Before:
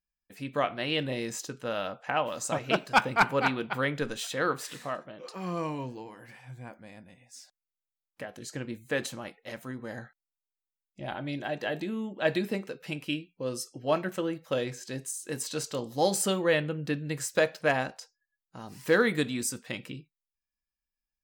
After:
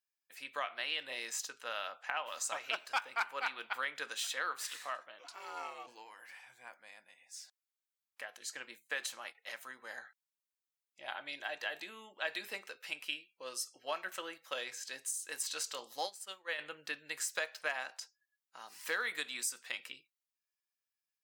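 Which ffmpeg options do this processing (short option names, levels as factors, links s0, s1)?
-filter_complex "[0:a]asplit=3[s0][s1][s2];[s0]afade=t=out:st=5.23:d=0.02[s3];[s1]aeval=exprs='val(0)*sin(2*PI*210*n/s)':c=same,afade=t=in:st=5.23:d=0.02,afade=t=out:st=5.86:d=0.02[s4];[s2]afade=t=in:st=5.86:d=0.02[s5];[s3][s4][s5]amix=inputs=3:normalize=0,asettb=1/sr,asplit=3[s6][s7][s8];[s6]atrim=end=8.384[s9];[s7]atrim=start=8.38:end=9.35,asetpts=PTS-STARTPTS,afade=t=in:d=0.004:c=qsin,afade=t=out:st=0.966:d=0.004:c=qsin,agate=range=0.0224:threshold=0.00501:ratio=3:release=100:detection=peak[s10];[s8]atrim=start=9.346[s11];[s9][s10]acrossfade=d=0.004:c1=hsin:c2=qsin[s12];[s12][s11]acrossfade=d=0.004:c1=qsin:c2=hsin,asplit=3[s13][s14][s15];[s13]afade=t=out:st=16.05:d=0.02[s16];[s14]agate=range=0.0224:threshold=0.126:ratio=3:release=100:detection=peak,afade=t=in:st=16.05:d=0.02,afade=t=out:st=16.58:d=0.02[s17];[s15]afade=t=in:st=16.58:d=0.02[s18];[s16][s17][s18]amix=inputs=3:normalize=0,highpass=1100,acompressor=threshold=0.02:ratio=3"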